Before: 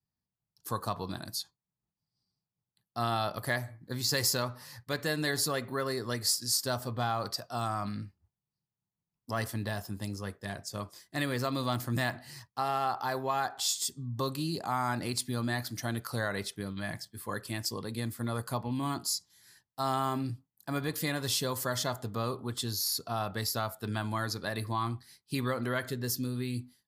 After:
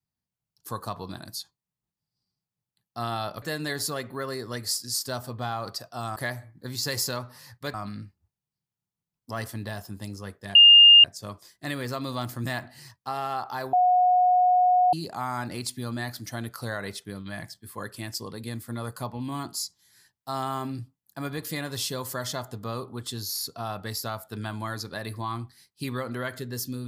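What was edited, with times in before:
3.42–5 move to 7.74
10.55 add tone 2820 Hz -9 dBFS 0.49 s
13.24–14.44 bleep 727 Hz -16.5 dBFS

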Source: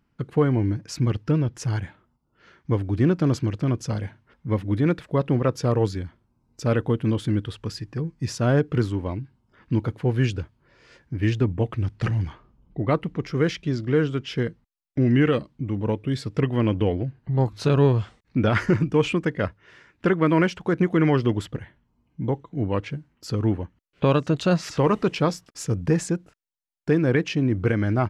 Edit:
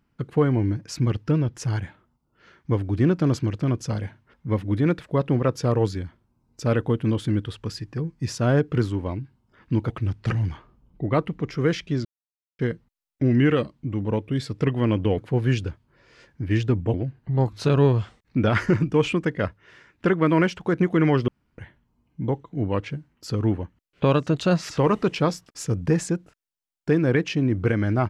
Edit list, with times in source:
9.9–11.66 move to 16.94
13.81–14.35 mute
21.28–21.58 room tone

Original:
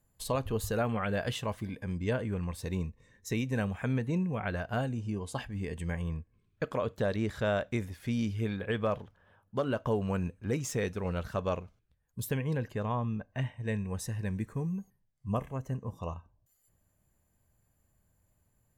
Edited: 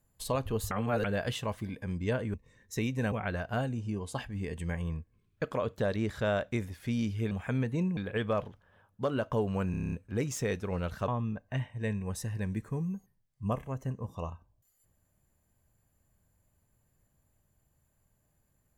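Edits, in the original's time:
0.71–1.04 reverse
2.34–2.88 cut
3.66–4.32 move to 8.51
10.25 stutter 0.03 s, 8 plays
11.41–12.92 cut

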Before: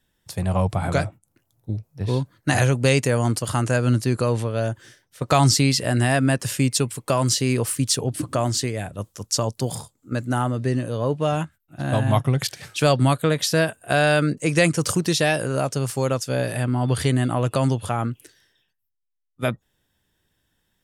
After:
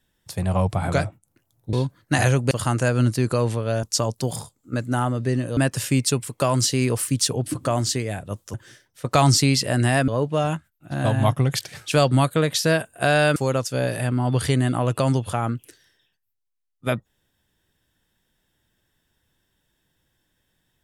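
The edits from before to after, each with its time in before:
1.73–2.09 cut
2.87–3.39 cut
4.71–6.25 swap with 9.22–10.96
14.24–15.92 cut

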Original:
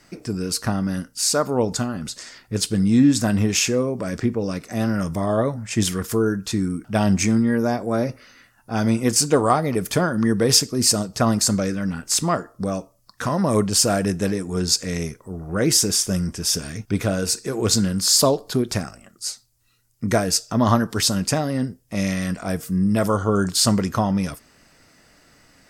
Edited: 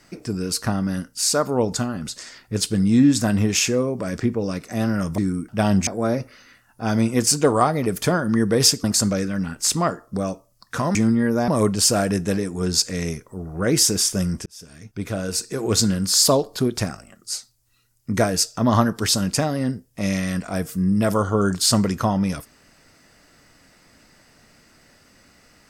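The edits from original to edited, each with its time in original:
5.18–6.54 cut
7.23–7.76 move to 13.42
10.73–11.31 cut
16.4–17.58 fade in

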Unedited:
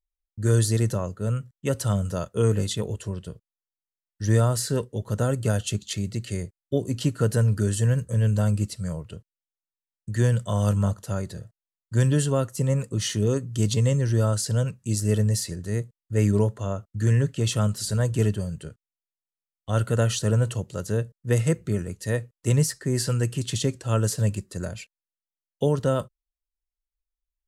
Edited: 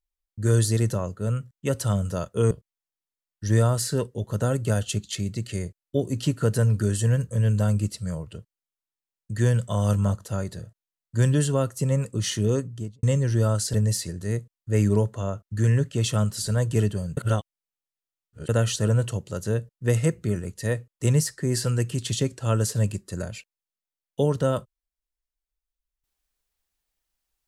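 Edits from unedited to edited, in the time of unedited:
2.51–3.29 cut
13.32–13.81 studio fade out
14.52–15.17 cut
18.6–19.92 reverse

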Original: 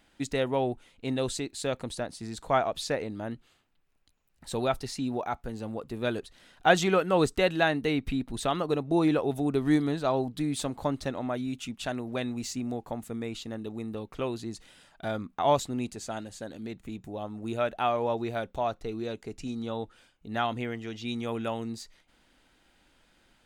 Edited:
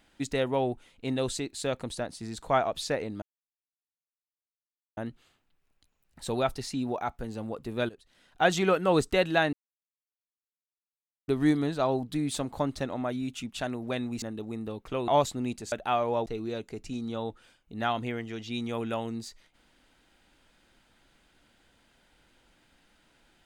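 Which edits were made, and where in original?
3.22 insert silence 1.75 s
6.14–6.94 fade in, from -17 dB
7.78–9.53 mute
12.47–13.49 cut
14.35–15.42 cut
16.06–17.65 cut
18.19–18.8 cut

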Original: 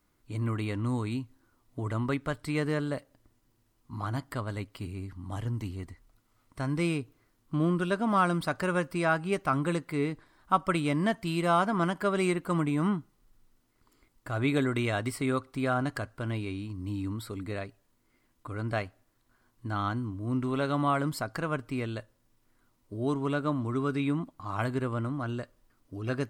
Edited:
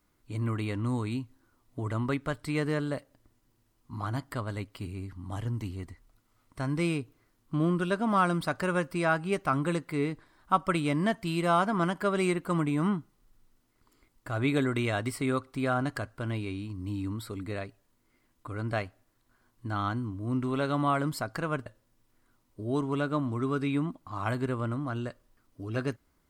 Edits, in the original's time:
21.66–21.99 cut

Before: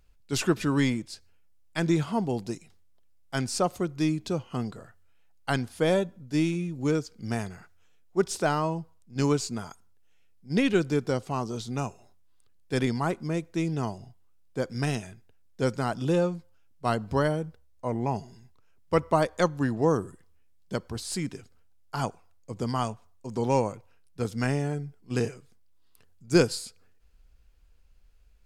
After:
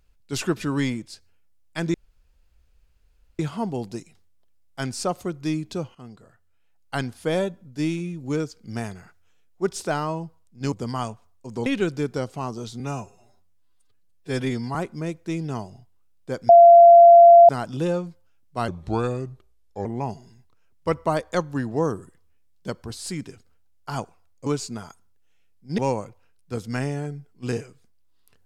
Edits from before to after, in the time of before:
1.94 insert room tone 1.45 s
4.5–5.54 fade in, from -14.5 dB
9.27–10.59 swap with 22.52–23.46
11.73–13.03 stretch 1.5×
14.77–15.77 bleep 686 Hz -6 dBFS
16.96–17.91 speed 81%

